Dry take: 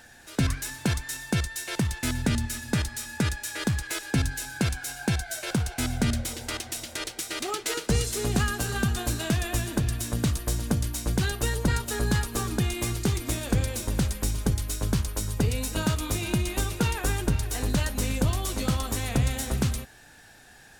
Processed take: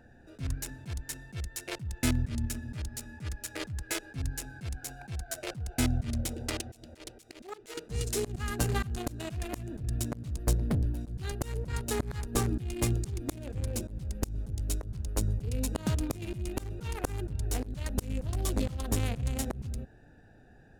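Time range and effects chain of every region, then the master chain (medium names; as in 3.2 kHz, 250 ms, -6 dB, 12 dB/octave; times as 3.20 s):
10.54–11.01 s: peaking EQ 7 kHz -7 dB 0.91 oct + overload inside the chain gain 26.5 dB
whole clip: local Wiener filter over 41 samples; slow attack 261 ms; trim +2.5 dB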